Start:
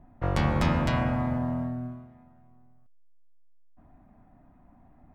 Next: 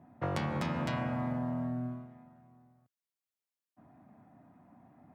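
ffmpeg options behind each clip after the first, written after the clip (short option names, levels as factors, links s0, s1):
-af "highpass=f=110:w=0.5412,highpass=f=110:w=1.3066,acompressor=threshold=0.0316:ratio=10"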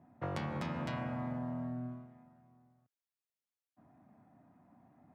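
-af "highshelf=f=7200:g=-4.5,volume=0.596"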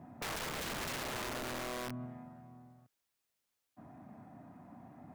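-af "aeval=exprs='(mod(59.6*val(0)+1,2)-1)/59.6':c=same,alimiter=level_in=11.2:limit=0.0631:level=0:latency=1,volume=0.0891,volume=3.16"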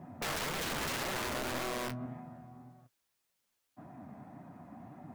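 -af "flanger=delay=5.2:depth=9.6:regen=39:speed=1.8:shape=sinusoidal,volume=2.37"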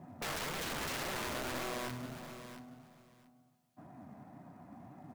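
-filter_complex "[0:a]asplit=2[s0][s1];[s1]acrusher=bits=4:mode=log:mix=0:aa=0.000001,volume=0.355[s2];[s0][s2]amix=inputs=2:normalize=0,aecho=1:1:681|1362:0.282|0.0451,volume=0.531"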